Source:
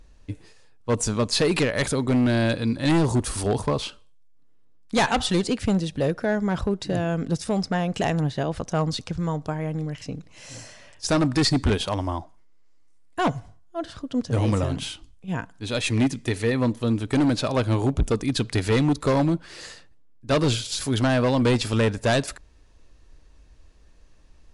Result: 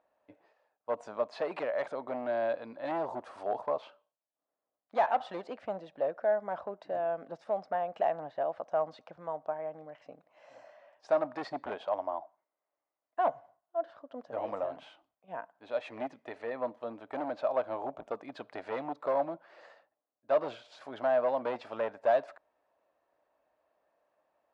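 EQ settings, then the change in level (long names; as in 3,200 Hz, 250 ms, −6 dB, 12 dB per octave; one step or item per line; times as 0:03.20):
four-pole ladder band-pass 690 Hz, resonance 60%
parametric band 450 Hz −7.5 dB 0.8 octaves
+5.5 dB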